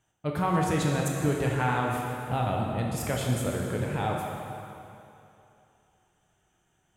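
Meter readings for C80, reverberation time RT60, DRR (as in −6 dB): 1.5 dB, 2.8 s, −1.5 dB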